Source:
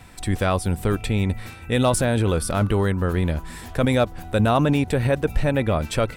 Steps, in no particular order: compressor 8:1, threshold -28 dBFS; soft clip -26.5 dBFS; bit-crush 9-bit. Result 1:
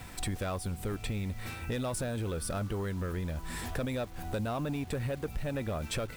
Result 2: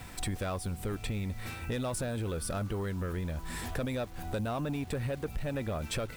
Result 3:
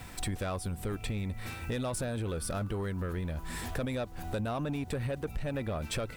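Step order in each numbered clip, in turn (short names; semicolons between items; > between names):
compressor > soft clip > bit-crush; compressor > bit-crush > soft clip; bit-crush > compressor > soft clip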